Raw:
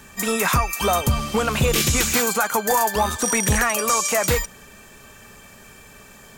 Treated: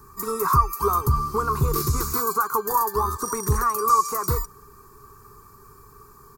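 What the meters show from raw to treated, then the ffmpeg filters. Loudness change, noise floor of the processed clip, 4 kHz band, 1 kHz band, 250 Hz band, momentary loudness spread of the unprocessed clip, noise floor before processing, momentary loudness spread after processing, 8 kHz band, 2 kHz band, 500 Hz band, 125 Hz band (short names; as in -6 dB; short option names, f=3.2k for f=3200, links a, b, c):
-3.0 dB, -50 dBFS, -14.0 dB, +1.5 dB, -7.5 dB, 4 LU, -46 dBFS, 6 LU, -10.0 dB, -14.0 dB, -5.0 dB, -0.5 dB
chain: -af "firequalizer=gain_entry='entry(140,0);entry(200,-12);entry(410,3);entry(580,-25);entry(1100,8);entry(1700,-17);entry(3100,-30);entry(4400,-9);entry(7400,-12);entry(13000,-1)':delay=0.05:min_phase=1"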